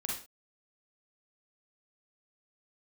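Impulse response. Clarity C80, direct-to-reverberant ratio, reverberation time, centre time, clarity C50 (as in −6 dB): 9.0 dB, −3.0 dB, non-exponential decay, 42 ms, 1.5 dB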